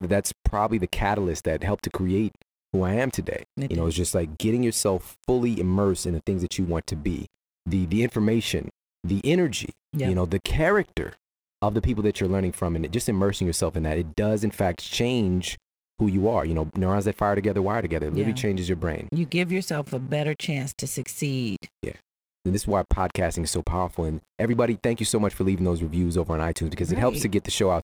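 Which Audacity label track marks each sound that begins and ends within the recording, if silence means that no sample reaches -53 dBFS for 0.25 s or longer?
2.730000	7.340000	sound
7.660000	8.700000	sound
9.040000	11.170000	sound
11.620000	15.580000	sound
15.980000	22.000000	sound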